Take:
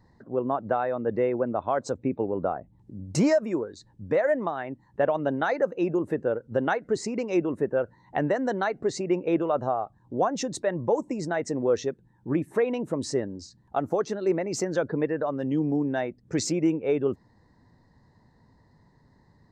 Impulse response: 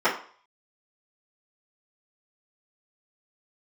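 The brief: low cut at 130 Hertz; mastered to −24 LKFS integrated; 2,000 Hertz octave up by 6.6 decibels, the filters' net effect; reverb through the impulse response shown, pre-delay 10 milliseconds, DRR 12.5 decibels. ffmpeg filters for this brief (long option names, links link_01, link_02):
-filter_complex "[0:a]highpass=130,equalizer=frequency=2000:width_type=o:gain=8.5,asplit=2[link_01][link_02];[1:a]atrim=start_sample=2205,adelay=10[link_03];[link_02][link_03]afir=irnorm=-1:irlink=0,volume=-30dB[link_04];[link_01][link_04]amix=inputs=2:normalize=0,volume=2.5dB"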